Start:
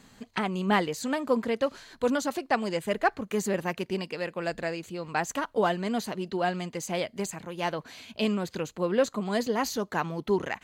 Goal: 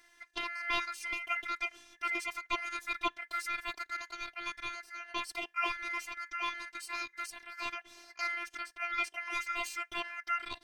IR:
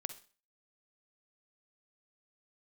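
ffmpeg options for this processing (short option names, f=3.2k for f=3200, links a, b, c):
-af "aeval=exprs='val(0)*sin(2*PI*1800*n/s)':c=same,afftfilt=real='hypot(re,im)*cos(PI*b)':imag='0':win_size=512:overlap=0.75,volume=-2dB"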